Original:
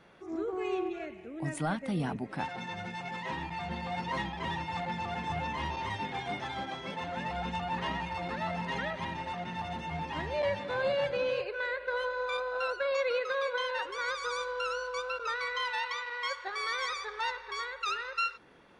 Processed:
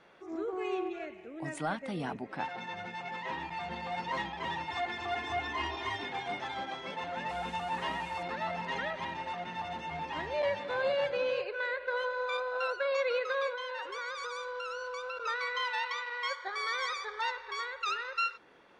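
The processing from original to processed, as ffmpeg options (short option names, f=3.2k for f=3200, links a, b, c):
-filter_complex "[0:a]asettb=1/sr,asplit=3[a][b][c];[a]atrim=end=2.214[d];[b]atrim=start=2.21:end=3.4,asetpts=PTS-STARTPTS,afade=t=in:d=0.004:c=qsin,afade=t=out:st=1.186:d=0.004:c=qsin,highshelf=f=8.5k:g=-10[e];[c]atrim=start=3.396[f];[d][e]acrossfade=d=0.004:c1=hsin:c2=qsin[g];[g][f]acrossfade=d=0.004:c1=qsin:c2=hsin,asettb=1/sr,asplit=3[h][i][j];[h]atrim=end=4.704[k];[i]atrim=start=4.7:end=6.09,asetpts=PTS-STARTPTS,afade=t=in:d=0.004:c=qsin,afade=t=out:st=1.386:d=0.004:c=qsin,aecho=1:1:2.8:0.83,atrim=end_sample=61299[l];[j]atrim=start=6.086[m];[k][l]acrossfade=d=0.004:c1=hsin:c2=qsin[n];[n][m]acrossfade=d=0.004:c1=qsin:c2=hsin,asettb=1/sr,asplit=3[o][p][q];[o]atrim=end=7.294[r];[p]atrim=start=7.29:end=8.23,asetpts=PTS-STARTPTS,afade=t=in:d=0.004:c=qsin,afade=t=out:st=0.936:d=0.004:c=qsin,acrusher=bits=7:mix=0:aa=0.5[s];[q]atrim=start=8.226[t];[r][s]acrossfade=d=0.004:c1=hsin:c2=qsin[u];[u][t]acrossfade=d=0.004:c1=qsin:c2=hsin,asettb=1/sr,asplit=3[v][w][x];[v]atrim=end=13.504[y];[w]atrim=start=13.5:end=15.17,asetpts=PTS-STARTPTS,afade=t=in:d=0.004:c=qsin,afade=t=out:st=1.666:d=0.004:c=qsin,acompressor=threshold=-34dB:ratio=6:attack=3.2:release=140:knee=1:detection=peak[z];[x]atrim=start=15.166[aa];[y][z]acrossfade=d=0.004:c1=hsin:c2=qsin[ab];[ab][aa]acrossfade=d=0.004:c1=qsin:c2=hsin,asettb=1/sr,asplit=3[ac][ad][ae];[ac]atrim=end=16.344[af];[ad]atrim=start=16.34:end=17.22,asetpts=PTS-STARTPTS,afade=t=in:d=0.004:c=qsin,afade=t=out:st=0.876:d=0.004:c=qsin,asuperstop=centerf=2700:order=20:qfactor=7.1[ag];[ae]atrim=start=17.216[ah];[af][ag]acrossfade=d=0.004:c1=hsin:c2=qsin[ai];[ai][ah]acrossfade=d=0.004:c1=qsin:c2=hsin,lowpass=f=9.3k:w=0.5412,lowpass=f=9.3k:w=1.3066,bass=f=250:g=-9,treble=f=4k:g=-2"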